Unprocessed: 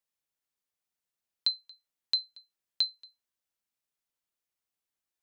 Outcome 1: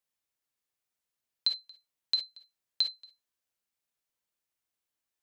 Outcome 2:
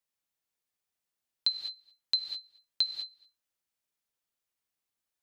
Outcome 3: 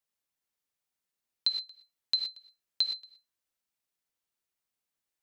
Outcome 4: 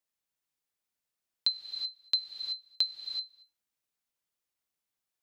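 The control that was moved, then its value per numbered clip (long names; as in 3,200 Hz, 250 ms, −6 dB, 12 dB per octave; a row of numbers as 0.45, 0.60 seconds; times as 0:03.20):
reverb whose tail is shaped and stops, gate: 80, 230, 140, 400 milliseconds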